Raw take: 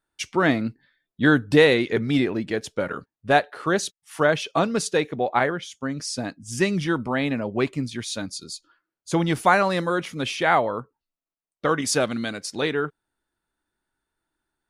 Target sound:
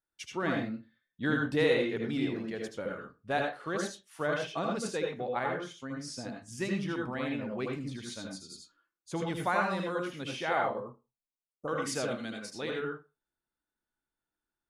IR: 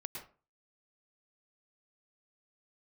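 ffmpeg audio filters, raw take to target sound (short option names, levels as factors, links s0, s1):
-filter_complex "[0:a]asettb=1/sr,asplit=3[s0][s1][s2];[s0]atrim=end=10.704[s3];[s1]atrim=start=10.7:end=11.68,asetpts=PTS-STARTPTS,afade=t=in:d=0.004:c=qsin,afade=t=out:st=0.976:d=0.004:c=qsin,asuperstop=centerf=2800:order=12:qfactor=0.52[s4];[s2]atrim=start=11.676[s5];[s3][s4]acrossfade=d=0.004:c1=hsin:c2=qsin[s6];[s6][s5]acrossfade=d=0.004:c1=qsin:c2=hsin[s7];[1:a]atrim=start_sample=2205,asetrate=61740,aresample=44100[s8];[s7][s8]afir=irnorm=-1:irlink=0,volume=0.501"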